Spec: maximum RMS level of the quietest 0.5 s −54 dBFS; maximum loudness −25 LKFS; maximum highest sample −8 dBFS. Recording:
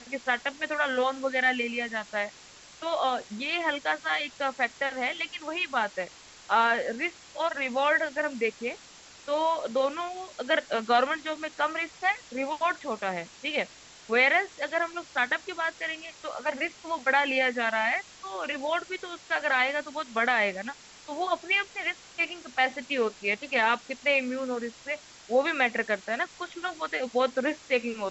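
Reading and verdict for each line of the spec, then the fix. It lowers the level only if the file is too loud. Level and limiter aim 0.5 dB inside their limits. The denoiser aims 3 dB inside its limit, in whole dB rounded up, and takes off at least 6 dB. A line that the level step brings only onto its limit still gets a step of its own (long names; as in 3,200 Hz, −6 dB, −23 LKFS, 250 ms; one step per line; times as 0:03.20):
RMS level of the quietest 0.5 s −51 dBFS: out of spec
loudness −28.0 LKFS: in spec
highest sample −10.5 dBFS: in spec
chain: broadband denoise 6 dB, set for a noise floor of −51 dBFS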